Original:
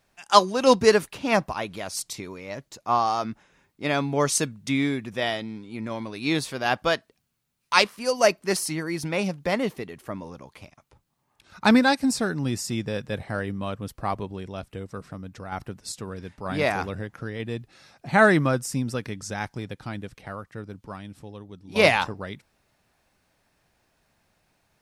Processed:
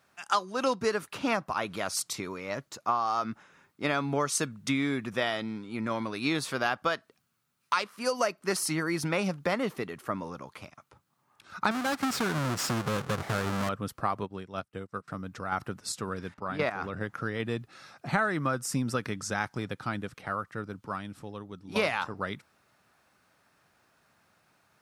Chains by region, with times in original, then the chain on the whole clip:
0:11.71–0:13.69: each half-wave held at its own peak + downward compressor 4 to 1, threshold −25 dBFS + linearly interpolated sample-rate reduction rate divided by 2×
0:14.24–0:15.08: high-pass filter 43 Hz + expander for the loud parts 2.5 to 1, over −47 dBFS
0:16.34–0:17.01: high-shelf EQ 6,300 Hz −10.5 dB + output level in coarse steps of 12 dB
whole clip: high-pass filter 100 Hz; parametric band 1,300 Hz +8.5 dB 0.59 octaves; downward compressor 10 to 1, threshold −24 dBFS

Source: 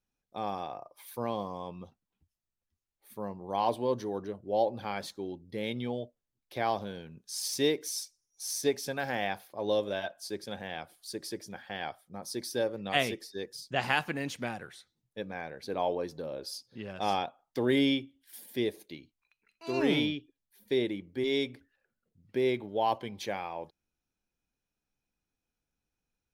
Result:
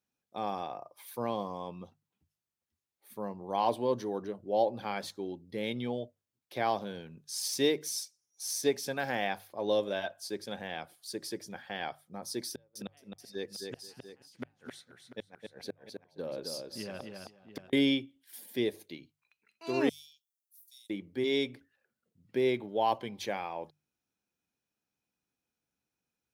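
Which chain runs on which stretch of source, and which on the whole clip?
0:12.49–0:17.73: gate with flip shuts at −26 dBFS, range −39 dB + multi-tap delay 263/480/692 ms −4.5/−20/−12.5 dB + one half of a high-frequency compander decoder only
0:19.89–0:20.90: inverse Chebyshev high-pass filter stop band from 1,300 Hz, stop band 70 dB + high-shelf EQ 11,000 Hz +8 dB
whole clip: high-pass filter 100 Hz; mains-hum notches 50/100/150 Hz

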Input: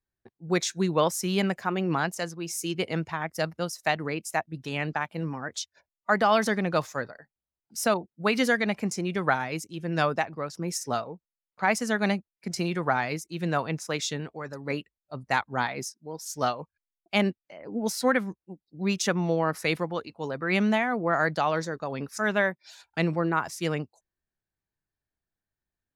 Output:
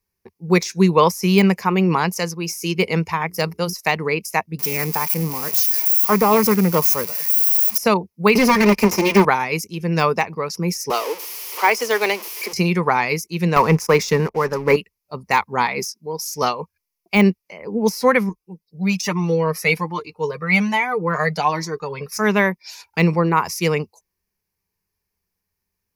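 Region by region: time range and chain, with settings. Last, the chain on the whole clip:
0:03.05–0:03.73: high-shelf EQ 10,000 Hz +6.5 dB + mains-hum notches 60/120/180/240/300/360/420 Hz
0:04.59–0:07.78: spike at every zero crossing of −21 dBFS + high-shelf EQ 7,800 Hz +11.5 dB + highs frequency-modulated by the lows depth 0.24 ms
0:08.35–0:09.25: lower of the sound and its delayed copy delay 3.3 ms + high-pass filter 150 Hz + leveller curve on the samples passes 3
0:10.90–0:12.53: converter with a step at zero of −33 dBFS + Butterworth high-pass 290 Hz 48 dB per octave + parametric band 3,200 Hz +6 dB 0.33 octaves
0:13.56–0:14.76: high-pass filter 44 Hz 24 dB per octave + high shelf with overshoot 2,100 Hz −6.5 dB, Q 1.5 + leveller curve on the samples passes 2
0:18.29–0:22.12: comb filter 6.6 ms, depth 56% + flanger whose copies keep moving one way rising 1.2 Hz
whole clip: EQ curve with evenly spaced ripples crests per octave 0.83, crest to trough 10 dB; de-essing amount 75%; high-shelf EQ 4,800 Hz +7 dB; level +7.5 dB

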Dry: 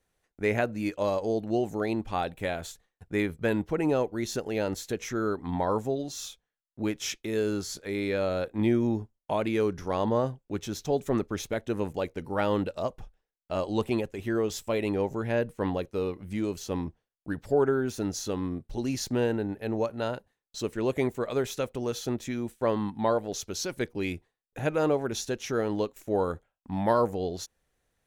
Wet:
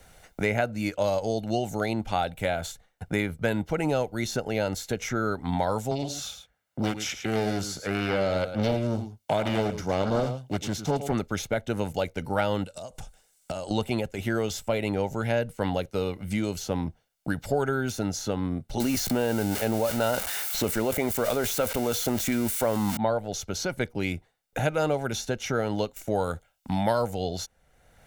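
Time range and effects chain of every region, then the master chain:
0:05.91–0:11.12: high-pass filter 43 Hz 24 dB per octave + single-tap delay 108 ms −11.5 dB + highs frequency-modulated by the lows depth 0.93 ms
0:12.64–0:13.71: parametric band 8,200 Hz +14.5 dB 1.1 octaves + downward compressor 16 to 1, threshold −42 dBFS
0:18.80–0:22.97: spike at every zero crossing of −26.5 dBFS + parametric band 130 Hz −11.5 dB 0.31 octaves + envelope flattener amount 70%
whole clip: comb filter 1.4 ms, depth 45%; multiband upward and downward compressor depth 70%; level +1 dB

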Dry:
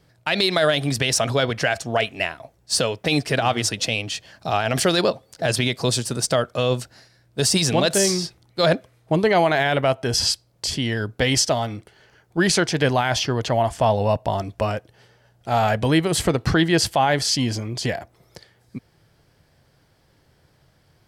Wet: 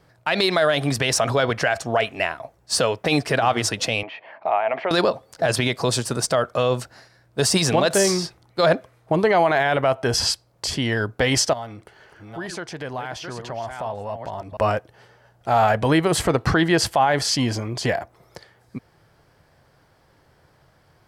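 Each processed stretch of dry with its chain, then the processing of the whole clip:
0:04.03–0:04.91: downward compressor 2 to 1, threshold −31 dBFS + loudspeaker in its box 350–2,600 Hz, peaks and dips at 650 Hz +7 dB, 930 Hz +7 dB, 1,500 Hz −4 dB, 2,200 Hz +8 dB
0:11.53–0:14.57: delay that plays each chunk backwards 469 ms, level −8.5 dB + downward compressor 2.5 to 1, threshold −38 dBFS
whole clip: drawn EQ curve 220 Hz 0 dB, 1,100 Hz +7 dB, 3,300 Hz −1 dB; brickwall limiter −8.5 dBFS

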